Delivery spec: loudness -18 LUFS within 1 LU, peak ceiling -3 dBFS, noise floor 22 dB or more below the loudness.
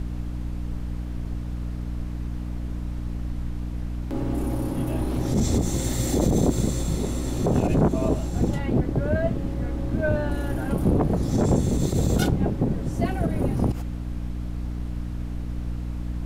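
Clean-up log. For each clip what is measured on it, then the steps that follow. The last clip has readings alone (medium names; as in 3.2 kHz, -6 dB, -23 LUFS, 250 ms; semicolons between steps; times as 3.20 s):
hum 60 Hz; highest harmonic 300 Hz; hum level -28 dBFS; noise floor -31 dBFS; noise floor target -48 dBFS; loudness -26.0 LUFS; peak level -7.5 dBFS; loudness target -18.0 LUFS
-> hum notches 60/120/180/240/300 Hz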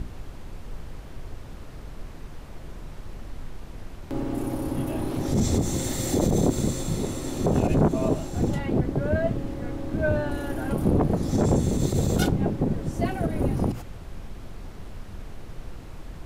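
hum not found; noise floor -41 dBFS; noise floor target -48 dBFS
-> noise print and reduce 7 dB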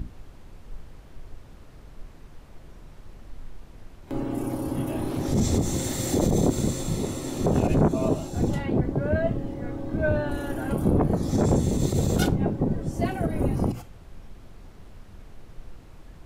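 noise floor -47 dBFS; noise floor target -48 dBFS
-> noise print and reduce 6 dB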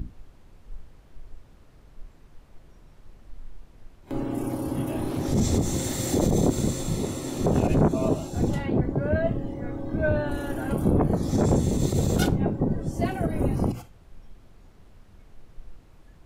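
noise floor -53 dBFS; loudness -26.0 LUFS; peak level -8.5 dBFS; loudness target -18.0 LUFS
-> trim +8 dB; peak limiter -3 dBFS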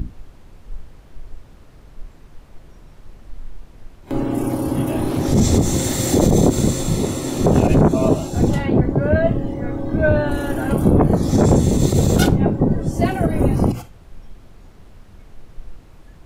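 loudness -18.0 LUFS; peak level -3.0 dBFS; noise floor -45 dBFS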